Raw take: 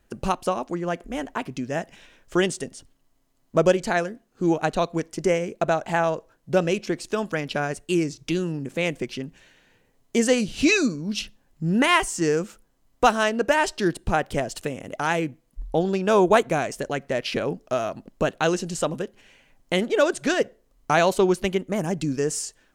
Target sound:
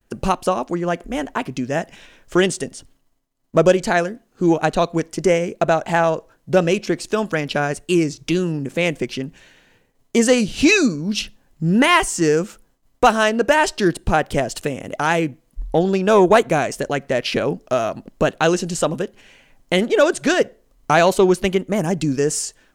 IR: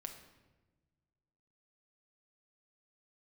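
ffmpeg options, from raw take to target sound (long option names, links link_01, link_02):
-af "acontrast=45,agate=range=-33dB:threshold=-52dB:ratio=3:detection=peak"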